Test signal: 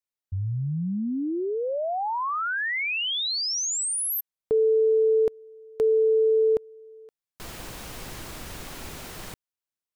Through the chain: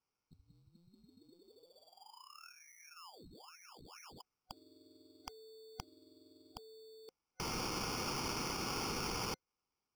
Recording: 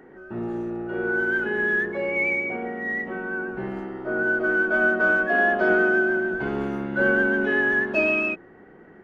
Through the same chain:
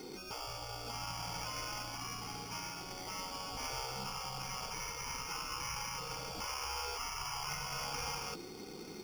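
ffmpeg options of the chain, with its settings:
-af "afftfilt=real='re*lt(hypot(re,im),0.0562)':imag='im*lt(hypot(re,im),0.0562)':win_size=1024:overlap=0.75,acrusher=samples=11:mix=1:aa=0.000001,superequalizer=8b=0.447:11b=0.282:14b=3.16,volume=1.12"

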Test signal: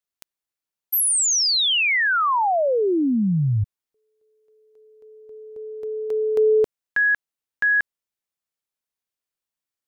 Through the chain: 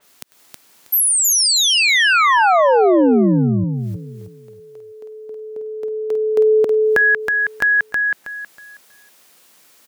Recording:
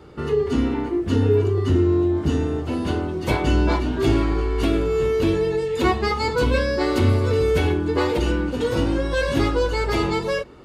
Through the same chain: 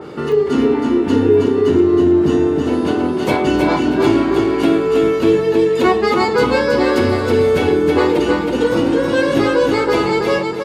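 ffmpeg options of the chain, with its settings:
-filter_complex "[0:a]highpass=200,asplit=2[s0][s1];[s1]acompressor=mode=upward:threshold=0.0794:ratio=2.5:attack=8:release=147:knee=2.83:detection=peak,volume=0.794[s2];[s0][s2]amix=inputs=2:normalize=0,lowshelf=f=390:g=3,asoftclip=type=hard:threshold=0.708,asplit=2[s3][s4];[s4]aecho=0:1:320|640|960|1280:0.631|0.164|0.0427|0.0111[s5];[s3][s5]amix=inputs=2:normalize=0,adynamicequalizer=threshold=0.0316:dfrequency=2700:dqfactor=0.7:tfrequency=2700:tqfactor=0.7:attack=5:release=100:ratio=0.375:range=1.5:mode=cutabove:tftype=highshelf"

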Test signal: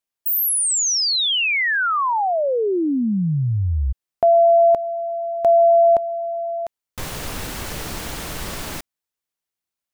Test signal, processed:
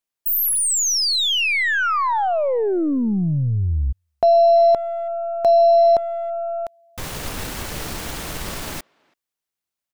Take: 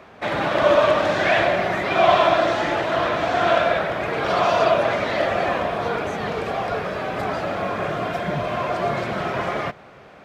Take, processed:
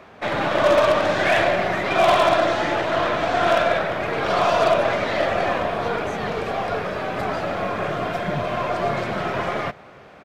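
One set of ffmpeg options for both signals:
-filter_complex "[0:a]aeval=exprs='0.355*(abs(mod(val(0)/0.355+3,4)-2)-1)':c=same,asplit=2[s0][s1];[s1]adelay=330,highpass=300,lowpass=3400,asoftclip=type=hard:threshold=0.126,volume=0.0355[s2];[s0][s2]amix=inputs=2:normalize=0,aeval=exprs='0.376*(cos(1*acos(clip(val(0)/0.376,-1,1)))-cos(1*PI/2))+0.0119*(cos(8*acos(clip(val(0)/0.376,-1,1)))-cos(8*PI/2))':c=same"

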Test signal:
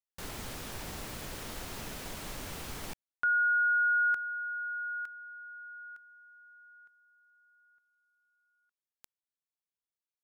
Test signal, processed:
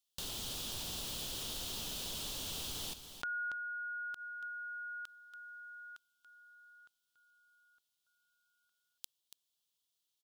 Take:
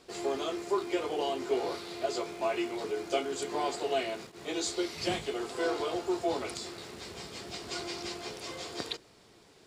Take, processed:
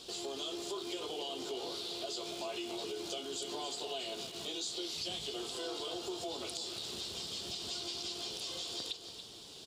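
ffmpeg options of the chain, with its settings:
-af "highshelf=f=2600:t=q:w=3:g=7.5,acompressor=threshold=0.00891:ratio=4:attack=2.9:release=150:detection=peak,aecho=1:1:283:0.316,volume=1.26"

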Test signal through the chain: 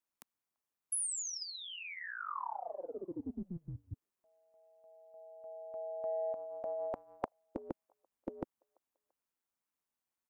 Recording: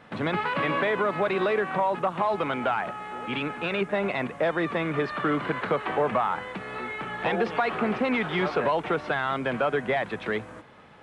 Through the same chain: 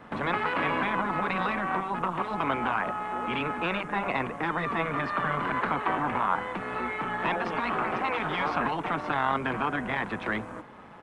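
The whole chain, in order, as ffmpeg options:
-filter_complex "[0:a]afftfilt=real='re*lt(hypot(re,im),0.251)':imag='im*lt(hypot(re,im),0.251)':win_size=1024:overlap=0.75,equalizer=f=250:t=o:w=1:g=6,equalizer=f=1000:t=o:w=1:g=6,equalizer=f=4000:t=o:w=1:g=-4,tremolo=f=180:d=0.571,acrossover=split=610|1100[s0][s1][s2];[s0]asoftclip=type=tanh:threshold=0.0282[s3];[s1]aecho=1:1:339|678:0.0708|0.0241[s4];[s3][s4][s2]amix=inputs=3:normalize=0,volume=1.33"

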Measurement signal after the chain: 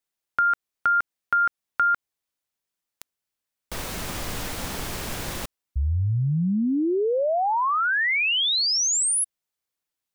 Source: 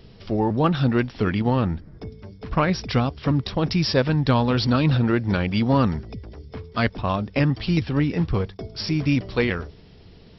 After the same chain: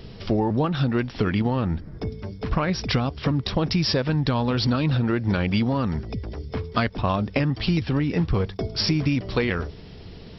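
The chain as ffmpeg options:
-af "alimiter=limit=0.224:level=0:latency=1:release=492,acompressor=threshold=0.0562:ratio=6,volume=2.11"

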